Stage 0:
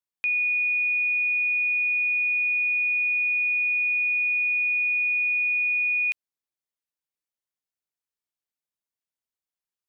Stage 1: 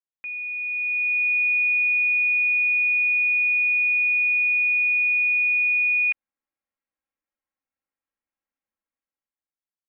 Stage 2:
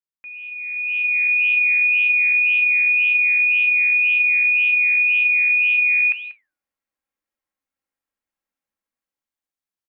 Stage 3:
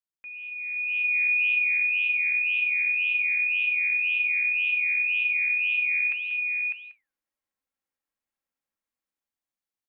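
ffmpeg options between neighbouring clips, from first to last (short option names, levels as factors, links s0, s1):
-af "lowpass=f=2300:w=0.5412,lowpass=f=2300:w=1.3066,aecho=1:1:3.7:0.65,dynaudnorm=f=140:g=13:m=3.76,volume=0.398"
-af "dynaudnorm=f=520:g=3:m=2.24,aecho=1:1:189:0.2,flanger=delay=8.2:depth=6.1:regen=-77:speed=1.9:shape=sinusoidal"
-af "aecho=1:1:601:0.447,volume=0.631"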